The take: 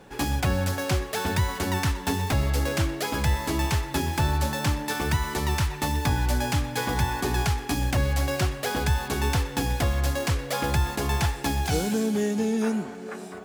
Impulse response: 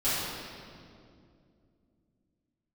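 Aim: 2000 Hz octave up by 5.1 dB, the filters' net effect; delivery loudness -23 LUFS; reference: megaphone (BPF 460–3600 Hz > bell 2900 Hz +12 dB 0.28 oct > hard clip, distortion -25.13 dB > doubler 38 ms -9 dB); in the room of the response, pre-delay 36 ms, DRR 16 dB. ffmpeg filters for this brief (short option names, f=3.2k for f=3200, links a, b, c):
-filter_complex "[0:a]equalizer=f=2k:t=o:g=5,asplit=2[a][b];[1:a]atrim=start_sample=2205,adelay=36[c];[b][c]afir=irnorm=-1:irlink=0,volume=-27.5dB[d];[a][d]amix=inputs=2:normalize=0,highpass=460,lowpass=3.6k,equalizer=f=2.9k:t=o:w=0.28:g=12,asoftclip=type=hard:threshold=-17.5dB,asplit=2[e][f];[f]adelay=38,volume=-9dB[g];[e][g]amix=inputs=2:normalize=0,volume=4.5dB"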